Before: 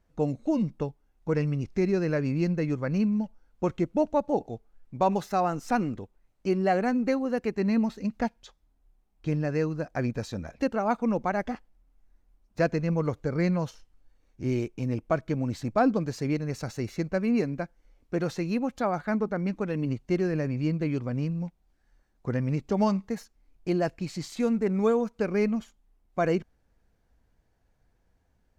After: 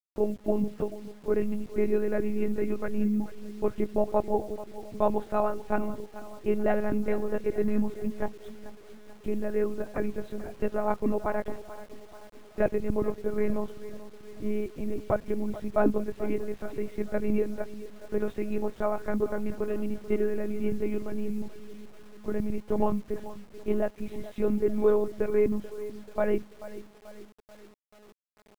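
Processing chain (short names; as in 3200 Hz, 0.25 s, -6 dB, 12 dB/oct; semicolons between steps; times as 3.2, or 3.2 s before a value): monotone LPC vocoder at 8 kHz 210 Hz; high shelf 2000 Hz -6.5 dB; feedback echo 0.436 s, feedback 52%, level -15 dB; bit-crush 9-bit; bell 420 Hz +3.5 dB 1.4 oct; gain -1.5 dB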